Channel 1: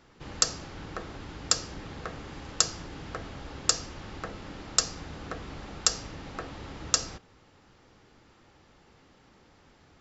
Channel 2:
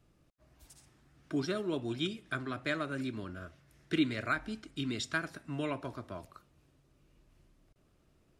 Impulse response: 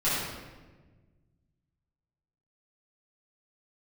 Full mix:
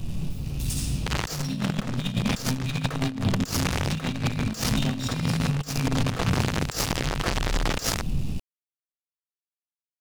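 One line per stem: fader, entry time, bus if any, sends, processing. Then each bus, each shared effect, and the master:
+2.5 dB, 0.85 s, no send, fuzz box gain 40 dB, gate -36 dBFS
+1.0 dB, 0.00 s, send -7 dB, FFT band-reject 270–2300 Hz; low shelf 280 Hz +8 dB; power-law curve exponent 0.5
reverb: on, RT60 1.3 s, pre-delay 5 ms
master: negative-ratio compressor -23 dBFS, ratio -0.5; limiter -11.5 dBFS, peak gain reduction 7 dB

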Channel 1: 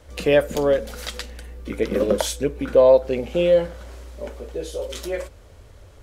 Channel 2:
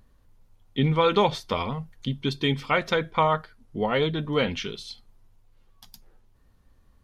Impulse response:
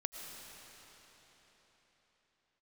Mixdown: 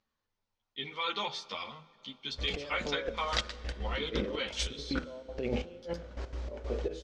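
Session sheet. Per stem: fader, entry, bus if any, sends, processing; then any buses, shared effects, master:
-5.5 dB, 2.30 s, send -15.5 dB, negative-ratio compressor -29 dBFS, ratio -1; step gate ".x.xx..xxx...x.." 190 bpm -12 dB
-10.0 dB, 0.00 s, send -16 dB, tilt +4.5 dB/oct; ensemble effect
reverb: on, RT60 4.4 s, pre-delay 70 ms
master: LPF 6000 Hz 24 dB/oct; de-hum 82.55 Hz, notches 19; mismatched tape noise reduction decoder only

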